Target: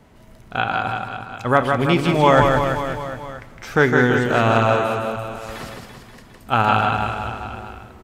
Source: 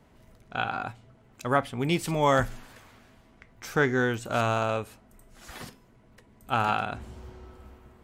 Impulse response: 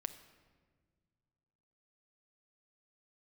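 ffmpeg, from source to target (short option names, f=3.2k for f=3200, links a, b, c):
-filter_complex "[0:a]acrossover=split=4500[a][b];[b]acompressor=threshold=-53dB:ratio=4:attack=1:release=60[c];[a][c]amix=inputs=2:normalize=0,aecho=1:1:160|336|529.6|742.6|976.8:0.631|0.398|0.251|0.158|0.1,asplit=2[d][e];[1:a]atrim=start_sample=2205,asetrate=29988,aresample=44100[f];[e][f]afir=irnorm=-1:irlink=0,volume=0dB[g];[d][g]amix=inputs=2:normalize=0,volume=2dB"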